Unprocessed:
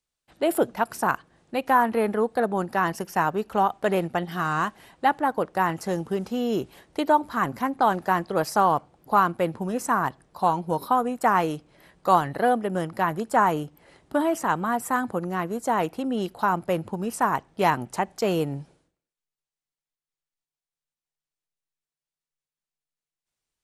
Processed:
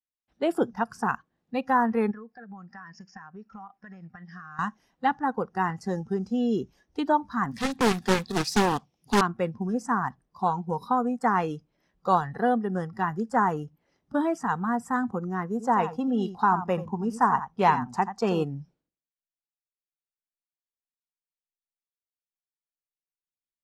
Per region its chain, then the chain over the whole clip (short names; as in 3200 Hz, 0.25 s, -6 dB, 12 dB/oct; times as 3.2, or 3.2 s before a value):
2.11–4.59 rippled Chebyshev low-pass 7000 Hz, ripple 9 dB + compressor 16:1, threshold -34 dBFS
7.51–9.21 resonant high shelf 1900 Hz +10 dB, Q 1.5 + careless resampling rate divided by 2×, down none, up zero stuff + Doppler distortion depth 0.89 ms
15.5–18.44 bell 950 Hz +5.5 dB 1 oct + echo 86 ms -11 dB
whole clip: spectral noise reduction 15 dB; LPF 5600 Hz 12 dB/oct; bell 230 Hz +6 dB 0.79 oct; gain -3.5 dB